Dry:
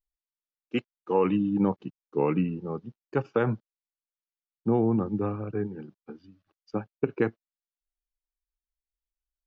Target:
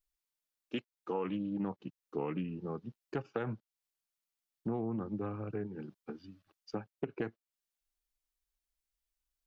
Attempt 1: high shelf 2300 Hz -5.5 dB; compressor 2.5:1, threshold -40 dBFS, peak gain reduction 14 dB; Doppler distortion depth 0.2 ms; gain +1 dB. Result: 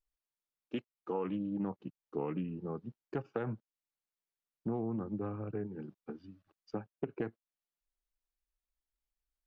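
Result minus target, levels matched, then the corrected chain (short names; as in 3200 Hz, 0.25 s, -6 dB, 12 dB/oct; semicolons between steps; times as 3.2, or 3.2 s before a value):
4000 Hz band -5.5 dB
high shelf 2300 Hz +4.5 dB; compressor 2.5:1, threshold -40 dBFS, peak gain reduction 14.5 dB; Doppler distortion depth 0.2 ms; gain +1 dB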